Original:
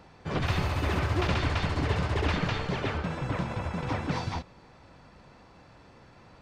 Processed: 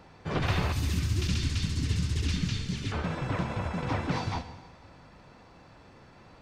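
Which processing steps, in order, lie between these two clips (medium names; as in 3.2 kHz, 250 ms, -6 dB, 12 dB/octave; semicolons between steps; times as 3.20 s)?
0.72–2.92 s: FFT filter 240 Hz 0 dB, 670 Hz -25 dB, 6.2 kHz +8 dB; plate-style reverb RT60 1.4 s, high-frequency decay 1×, DRR 10 dB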